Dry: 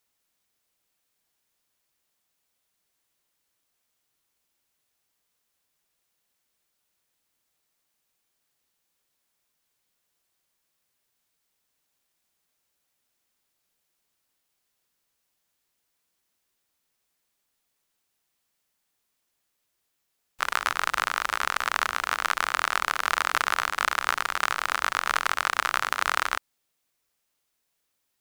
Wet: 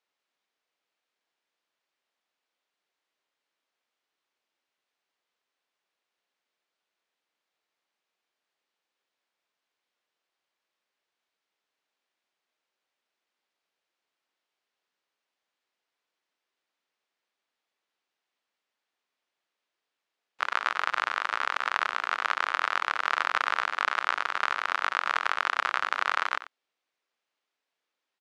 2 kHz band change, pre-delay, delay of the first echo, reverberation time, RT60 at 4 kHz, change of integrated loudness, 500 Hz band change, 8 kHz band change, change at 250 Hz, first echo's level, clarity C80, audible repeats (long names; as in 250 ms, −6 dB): −1.5 dB, no reverb audible, 91 ms, no reverb audible, no reverb audible, −2.0 dB, −2.0 dB, −13.5 dB, −6.0 dB, −14.5 dB, no reverb audible, 1